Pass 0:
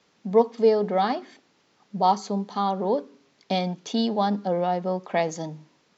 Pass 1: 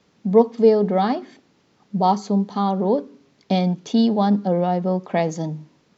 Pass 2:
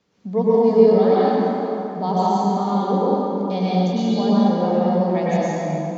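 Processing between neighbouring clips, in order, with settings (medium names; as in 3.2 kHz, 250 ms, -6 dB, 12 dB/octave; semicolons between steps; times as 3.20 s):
bass shelf 340 Hz +11.5 dB
plate-style reverb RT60 3.4 s, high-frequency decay 0.6×, pre-delay 90 ms, DRR -9 dB; trim -8 dB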